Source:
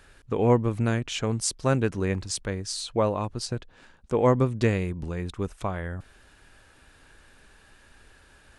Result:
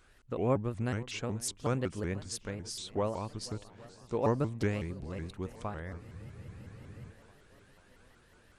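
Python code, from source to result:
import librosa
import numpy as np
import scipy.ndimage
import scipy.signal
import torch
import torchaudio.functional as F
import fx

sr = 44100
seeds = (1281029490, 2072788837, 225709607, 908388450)

y = fx.echo_swing(x, sr, ms=818, ratio=1.5, feedback_pct=56, wet_db=-20.0)
y = fx.spec_freeze(y, sr, seeds[0], at_s=6.02, hold_s=1.07)
y = fx.vibrato_shape(y, sr, shape='saw_up', rate_hz=5.4, depth_cents=250.0)
y = y * librosa.db_to_amplitude(-8.5)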